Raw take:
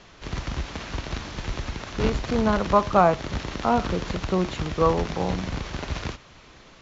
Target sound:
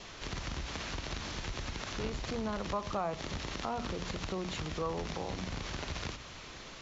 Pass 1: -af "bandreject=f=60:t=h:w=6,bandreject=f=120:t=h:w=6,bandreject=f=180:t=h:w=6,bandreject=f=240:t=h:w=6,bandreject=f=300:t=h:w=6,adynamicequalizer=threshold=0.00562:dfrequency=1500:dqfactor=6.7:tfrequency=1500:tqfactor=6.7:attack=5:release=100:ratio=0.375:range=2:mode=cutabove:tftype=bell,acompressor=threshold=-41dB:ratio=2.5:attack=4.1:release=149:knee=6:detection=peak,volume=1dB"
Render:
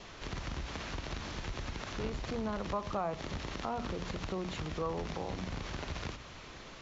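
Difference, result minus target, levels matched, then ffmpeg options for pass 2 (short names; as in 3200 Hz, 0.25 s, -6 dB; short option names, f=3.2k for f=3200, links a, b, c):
8000 Hz band -4.0 dB
-af "bandreject=f=60:t=h:w=6,bandreject=f=120:t=h:w=6,bandreject=f=180:t=h:w=6,bandreject=f=240:t=h:w=6,bandreject=f=300:t=h:w=6,adynamicequalizer=threshold=0.00562:dfrequency=1500:dqfactor=6.7:tfrequency=1500:tqfactor=6.7:attack=5:release=100:ratio=0.375:range=2:mode=cutabove:tftype=bell,acompressor=threshold=-41dB:ratio=2.5:attack=4.1:release=149:knee=6:detection=peak,highshelf=f=3k:g=6,volume=1dB"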